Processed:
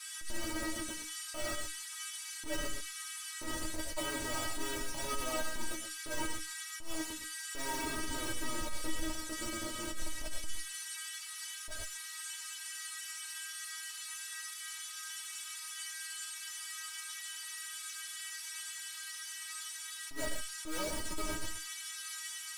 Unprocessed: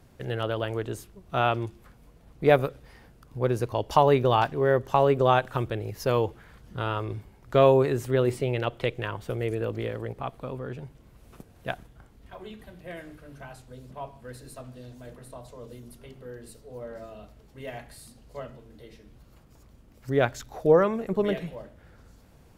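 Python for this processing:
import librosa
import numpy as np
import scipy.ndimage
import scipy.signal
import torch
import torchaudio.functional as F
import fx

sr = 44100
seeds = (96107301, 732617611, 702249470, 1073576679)

p1 = scipy.signal.sosfilt(scipy.signal.butter(2, 100.0, 'highpass', fs=sr, output='sos'), x)
p2 = fx.hum_notches(p1, sr, base_hz=50, count=8)
p3 = p2 + fx.echo_banded(p2, sr, ms=116, feedback_pct=50, hz=340.0, wet_db=-17, dry=0)
p4 = fx.schmitt(p3, sr, flips_db=-25.5)
p5 = fx.dmg_noise_band(p4, sr, seeds[0], low_hz=1300.0, high_hz=11000.0, level_db=-40.0)
p6 = fx.stiff_resonator(p5, sr, f0_hz=310.0, decay_s=0.22, stiffness=0.002)
p7 = fx.quant_companded(p6, sr, bits=8)
p8 = fx.doubler(p7, sr, ms=12.0, db=-6.5)
p9 = fx.rev_gated(p8, sr, seeds[1], gate_ms=150, shape='rising', drr_db=4.5)
p10 = fx.attack_slew(p9, sr, db_per_s=110.0)
y = F.gain(torch.from_numpy(p10), 6.5).numpy()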